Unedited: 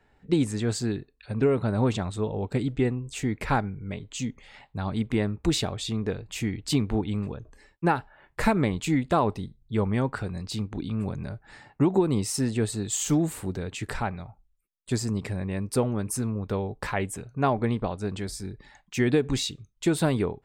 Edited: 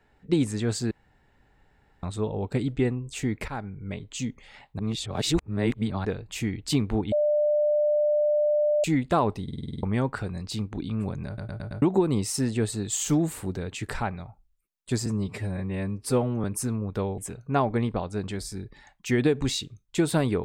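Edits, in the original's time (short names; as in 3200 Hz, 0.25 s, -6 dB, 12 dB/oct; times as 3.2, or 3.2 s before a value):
0.91–2.03 room tone
3.48–3.86 fade in, from -16 dB
4.79–6.05 reverse
7.12–8.84 bleep 596 Hz -19.5 dBFS
9.43 stutter in place 0.05 s, 8 plays
11.27 stutter in place 0.11 s, 5 plays
15.06–15.98 stretch 1.5×
16.72–17.06 cut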